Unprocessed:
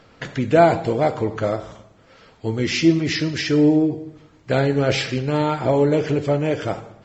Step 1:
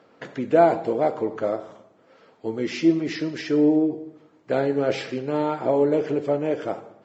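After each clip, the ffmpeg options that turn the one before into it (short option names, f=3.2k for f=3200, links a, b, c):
-af "highpass=280,tiltshelf=f=1.4k:g=6,volume=-6dB"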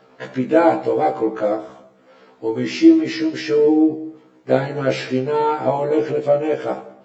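-af "afftfilt=real='re*1.73*eq(mod(b,3),0)':imag='im*1.73*eq(mod(b,3),0)':win_size=2048:overlap=0.75,volume=7.5dB"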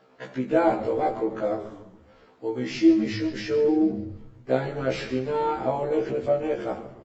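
-filter_complex "[0:a]asplit=6[a][b][c][d][e][f];[b]adelay=142,afreqshift=-110,volume=-14dB[g];[c]adelay=284,afreqshift=-220,volume=-20dB[h];[d]adelay=426,afreqshift=-330,volume=-26dB[i];[e]adelay=568,afreqshift=-440,volume=-32.1dB[j];[f]adelay=710,afreqshift=-550,volume=-38.1dB[k];[a][g][h][i][j][k]amix=inputs=6:normalize=0,volume=-7dB"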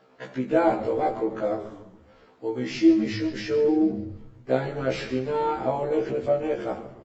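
-af anull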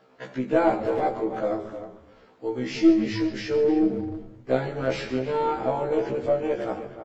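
-filter_complex "[0:a]asplit=2[a][b];[b]adelay=310,highpass=300,lowpass=3.4k,asoftclip=type=hard:threshold=-18dB,volume=-11dB[c];[a][c]amix=inputs=2:normalize=0,aeval=exprs='0.398*(cos(1*acos(clip(val(0)/0.398,-1,1)))-cos(1*PI/2))+0.0178*(cos(4*acos(clip(val(0)/0.398,-1,1)))-cos(4*PI/2))':c=same"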